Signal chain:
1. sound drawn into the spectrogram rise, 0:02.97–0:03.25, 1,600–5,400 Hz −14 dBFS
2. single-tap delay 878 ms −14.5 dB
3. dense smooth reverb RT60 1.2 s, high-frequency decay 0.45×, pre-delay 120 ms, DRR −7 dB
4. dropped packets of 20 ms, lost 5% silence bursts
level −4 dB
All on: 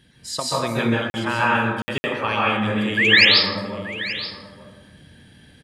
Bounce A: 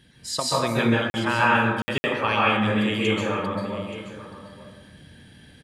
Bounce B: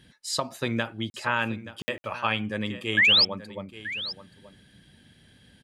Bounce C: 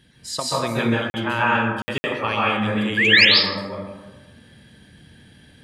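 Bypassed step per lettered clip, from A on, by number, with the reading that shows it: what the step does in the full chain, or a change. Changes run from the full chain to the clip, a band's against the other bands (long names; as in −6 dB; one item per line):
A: 1, 4 kHz band −10.0 dB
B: 3, change in crest factor −2.5 dB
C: 2, change in momentary loudness spread +2 LU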